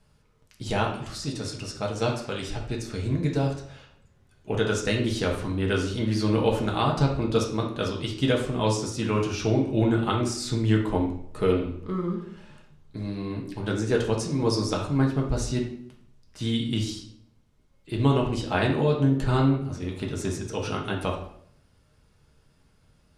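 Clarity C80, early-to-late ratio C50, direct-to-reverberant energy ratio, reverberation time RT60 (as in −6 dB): 9.5 dB, 6.0 dB, −1.5 dB, 0.65 s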